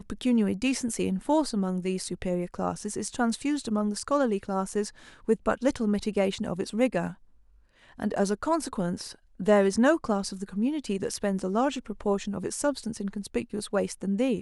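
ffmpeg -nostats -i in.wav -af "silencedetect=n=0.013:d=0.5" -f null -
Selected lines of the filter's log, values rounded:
silence_start: 7.12
silence_end: 7.99 | silence_duration: 0.87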